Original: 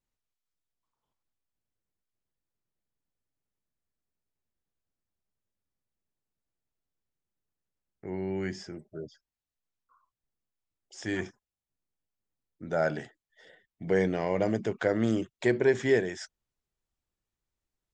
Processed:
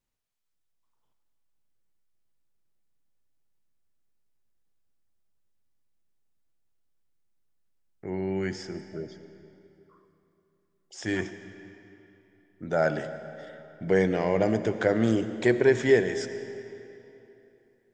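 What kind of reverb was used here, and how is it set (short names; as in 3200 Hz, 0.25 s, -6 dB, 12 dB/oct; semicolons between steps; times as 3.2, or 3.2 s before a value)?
digital reverb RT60 3.1 s, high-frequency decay 0.8×, pre-delay 45 ms, DRR 10.5 dB; gain +3 dB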